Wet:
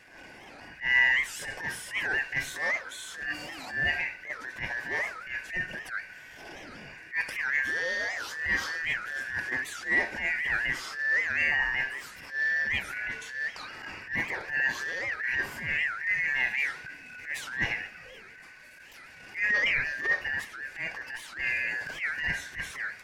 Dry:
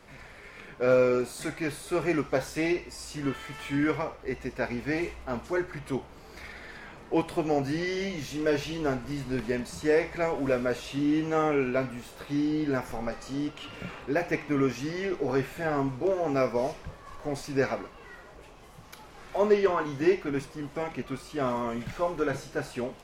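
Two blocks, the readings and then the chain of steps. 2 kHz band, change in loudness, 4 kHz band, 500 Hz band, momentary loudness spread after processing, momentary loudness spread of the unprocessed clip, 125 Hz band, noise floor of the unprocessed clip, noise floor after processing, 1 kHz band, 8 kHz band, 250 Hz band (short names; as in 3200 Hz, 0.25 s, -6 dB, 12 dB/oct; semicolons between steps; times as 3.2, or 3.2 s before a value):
+11.0 dB, +0.5 dB, +4.0 dB, -17.5 dB, 17 LU, 17 LU, -12.0 dB, -49 dBFS, -49 dBFS, -7.0 dB, +1.0 dB, -19.0 dB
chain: four-band scrambler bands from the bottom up 2143; transient shaper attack -12 dB, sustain +2 dB; record warp 78 rpm, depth 250 cents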